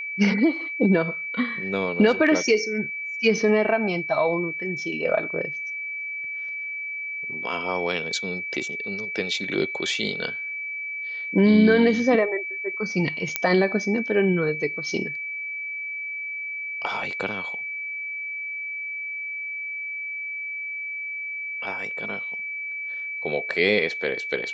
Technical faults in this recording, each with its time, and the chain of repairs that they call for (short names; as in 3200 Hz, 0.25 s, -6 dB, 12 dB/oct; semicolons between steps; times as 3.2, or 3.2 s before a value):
tone 2300 Hz -29 dBFS
13.36 pop -5 dBFS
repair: de-click; notch 2300 Hz, Q 30